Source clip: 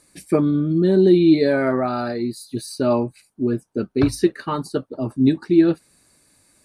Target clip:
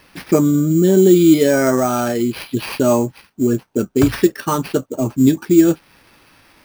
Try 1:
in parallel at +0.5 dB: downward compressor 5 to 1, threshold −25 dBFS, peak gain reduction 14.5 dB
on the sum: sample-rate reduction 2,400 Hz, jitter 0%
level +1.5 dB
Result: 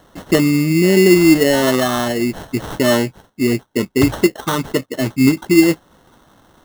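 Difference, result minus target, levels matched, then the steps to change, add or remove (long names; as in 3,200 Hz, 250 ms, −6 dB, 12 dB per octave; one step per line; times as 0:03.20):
sample-rate reduction: distortion +8 dB
change: sample-rate reduction 7,200 Hz, jitter 0%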